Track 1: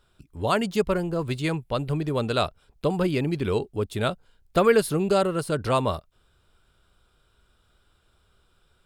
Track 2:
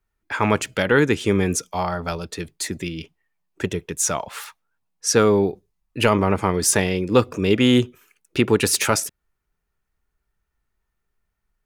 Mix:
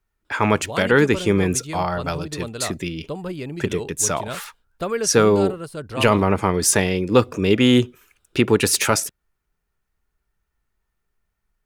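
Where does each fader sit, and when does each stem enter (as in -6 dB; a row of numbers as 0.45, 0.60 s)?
-6.0, +1.0 dB; 0.25, 0.00 s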